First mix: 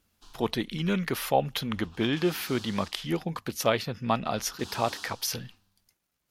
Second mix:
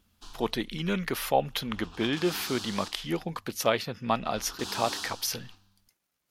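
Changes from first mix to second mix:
speech: add low shelf 130 Hz -8.5 dB; background +6.5 dB

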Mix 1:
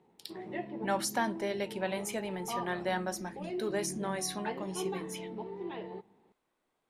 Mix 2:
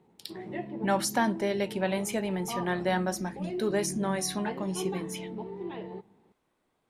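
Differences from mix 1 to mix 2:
speech +3.5 dB; master: add bell 95 Hz +7 dB 2.9 oct

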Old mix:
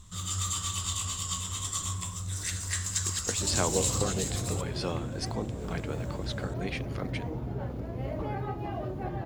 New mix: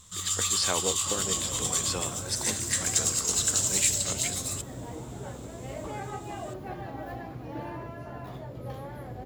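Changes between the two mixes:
speech: entry -2.90 s; second sound: entry -2.35 s; master: add tilt +2 dB/oct

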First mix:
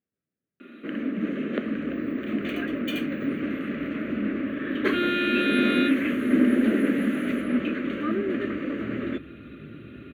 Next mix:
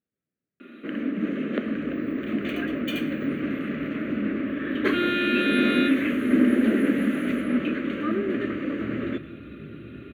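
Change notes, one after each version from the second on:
reverb: on, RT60 0.85 s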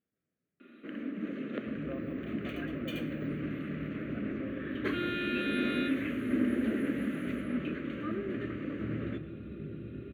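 speech: send on; first sound -10.0 dB

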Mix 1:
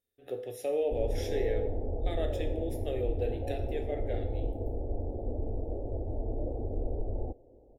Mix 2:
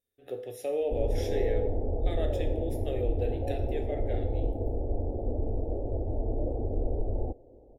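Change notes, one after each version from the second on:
background +3.5 dB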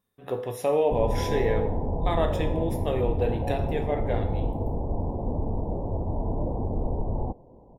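speech +6.0 dB; master: remove fixed phaser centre 420 Hz, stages 4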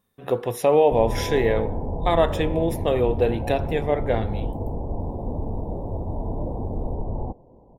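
speech +8.5 dB; reverb: off

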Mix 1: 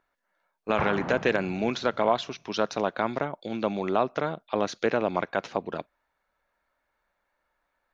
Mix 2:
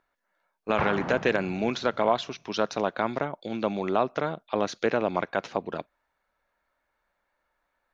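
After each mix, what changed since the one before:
background: remove air absorption 170 m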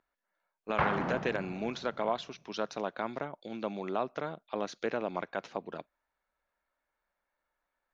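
speech -8.0 dB; master: add bell 98 Hz -9.5 dB 0.4 oct

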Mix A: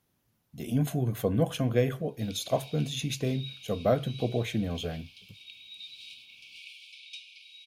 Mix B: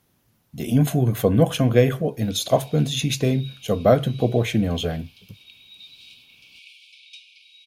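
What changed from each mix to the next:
speech +9.0 dB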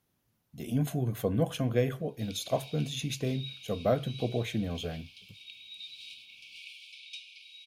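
speech -11.0 dB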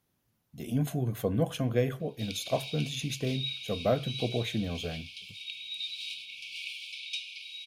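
background +8.0 dB

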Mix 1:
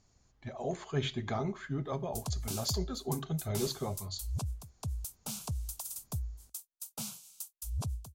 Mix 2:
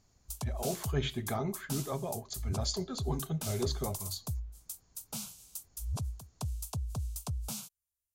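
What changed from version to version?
background: entry -1.85 s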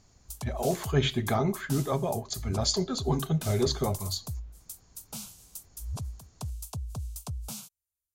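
speech +7.5 dB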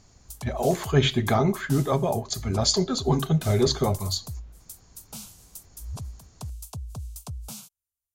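speech +5.0 dB

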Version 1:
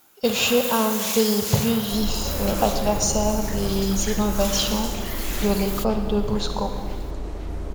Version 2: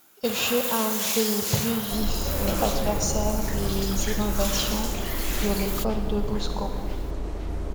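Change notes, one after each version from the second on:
speech -5.0 dB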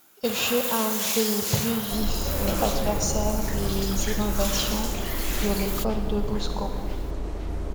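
none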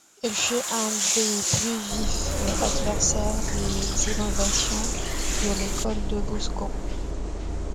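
speech: send off; master: add synth low-pass 7200 Hz, resonance Q 2.9

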